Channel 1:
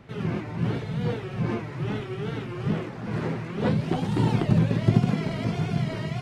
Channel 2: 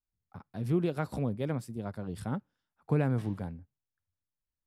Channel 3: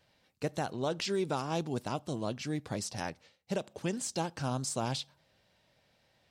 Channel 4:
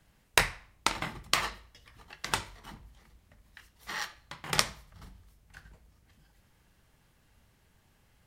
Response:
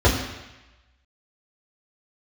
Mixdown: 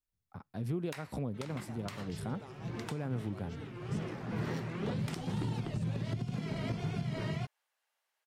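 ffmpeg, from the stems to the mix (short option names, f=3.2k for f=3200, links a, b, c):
-filter_complex "[0:a]acrossover=split=140|3000[a][b][c];[b]acompressor=threshold=-28dB:ratio=6[d];[a][d][c]amix=inputs=3:normalize=0,adelay=1250,volume=-4.5dB[e];[1:a]acompressor=threshold=-33dB:ratio=2.5,volume=-0.5dB,asplit=2[f][g];[2:a]adelay=1100,volume=-19.5dB[h];[3:a]highpass=f=590:w=0.5412,highpass=f=590:w=1.3066,adelay=550,volume=-12.5dB[i];[g]apad=whole_len=329354[j];[e][j]sidechaincompress=threshold=-43dB:ratio=10:attack=9.9:release=906[k];[k][f][h][i]amix=inputs=4:normalize=0,alimiter=level_in=2dB:limit=-24dB:level=0:latency=1:release=202,volume=-2dB"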